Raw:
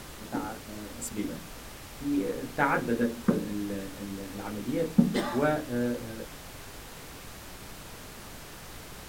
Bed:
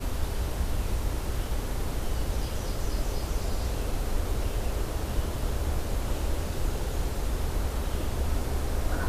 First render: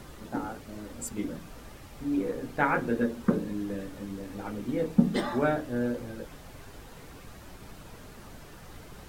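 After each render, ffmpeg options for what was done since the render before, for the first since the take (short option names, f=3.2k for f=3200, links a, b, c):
-af "afftdn=nr=8:nf=-45"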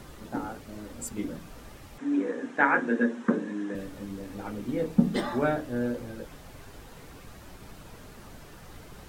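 -filter_complex "[0:a]asettb=1/sr,asplit=3[a][b][c];[a]atrim=end=1.984[d];[b]atrim=start=1.98:end=3.75,asetpts=PTS-STARTPTS,afade=t=in:d=0.004:c=qsin,afade=t=out:st=1.766:d=0.004:c=qsin,highpass=f=210:w=0.5412,highpass=f=210:w=1.3066,equalizer=f=250:t=q:w=4:g=5,equalizer=f=1k:t=q:w=4:g=3,equalizer=f=1.7k:t=q:w=4:g=9,equalizer=f=4.6k:t=q:w=4:g=-9,lowpass=f=8.1k:w=0.5412,lowpass=f=8.1k:w=1.3066[e];[c]atrim=start=3.746[f];[d][e]acrossfade=d=0.004:c1=hsin:c2=qsin[g];[g][f]acrossfade=d=0.004:c1=qsin:c2=hsin"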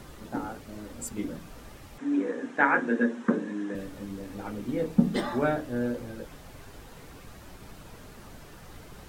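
-af anull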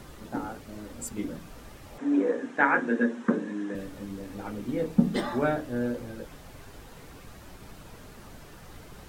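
-filter_complex "[0:a]asettb=1/sr,asplit=3[a][b][c];[a]atrim=end=1.864[d];[b]atrim=start=1.86:end=2.37,asetpts=PTS-STARTPTS,afade=t=in:d=0.004:c=qsin,afade=t=out:st=0.506:d=0.004:c=qsin,equalizer=f=570:w=0.99:g=7[e];[c]atrim=start=2.366[f];[d][e]acrossfade=d=0.004:c1=hsin:c2=qsin[g];[g][f]acrossfade=d=0.004:c1=qsin:c2=hsin"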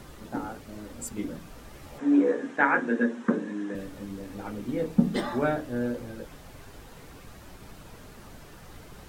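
-filter_complex "[0:a]asettb=1/sr,asplit=3[a][b][c];[a]atrim=end=1.724[d];[b]atrim=start=1.72:end=2.56,asetpts=PTS-STARTPTS,afade=t=in:d=0.004:c=qsin,afade=t=out:st=0.836:d=0.004:c=qsin,asplit=2[e][f];[f]adelay=14,volume=-5dB[g];[e][g]amix=inputs=2:normalize=0,atrim=end_sample=37044[h];[c]atrim=start=2.556[i];[d][h]acrossfade=d=0.004:c1=hsin:c2=qsin[j];[j][i]acrossfade=d=0.004:c1=qsin:c2=hsin"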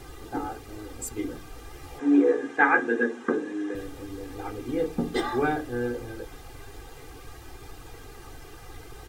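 -af "aecho=1:1:2.5:0.87"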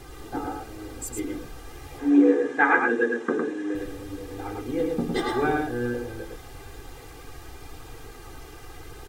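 -af "aecho=1:1:108:0.668"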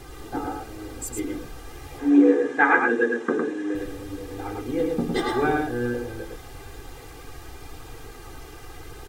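-af "volume=1.5dB"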